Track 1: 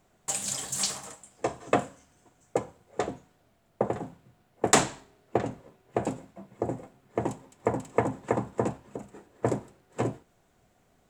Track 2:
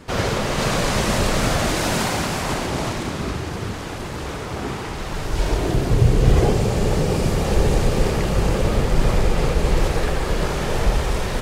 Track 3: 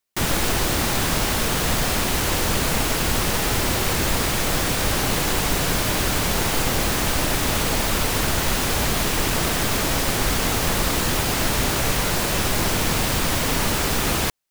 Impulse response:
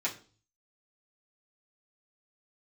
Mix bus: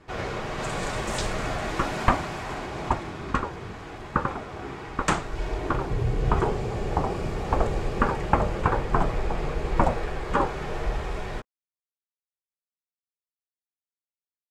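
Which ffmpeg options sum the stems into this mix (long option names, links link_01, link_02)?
-filter_complex "[0:a]dynaudnorm=framelen=320:gausssize=5:maxgain=11.5dB,agate=range=-33dB:threshold=-57dB:ratio=3:detection=peak,aeval=exprs='val(0)*sin(2*PI*520*n/s+520*0.35/1.3*sin(2*PI*1.3*n/s))':channel_layout=same,adelay=350,volume=1dB[link_01];[1:a]volume=-8.5dB,asplit=2[link_02][link_03];[link_03]volume=-6dB[link_04];[3:a]atrim=start_sample=2205[link_05];[link_04][link_05]afir=irnorm=-1:irlink=0[link_06];[link_01][link_02][link_06]amix=inputs=3:normalize=0,lowpass=frequency=1600:poles=1,equalizer=frequency=210:width_type=o:width=2.7:gain=-5"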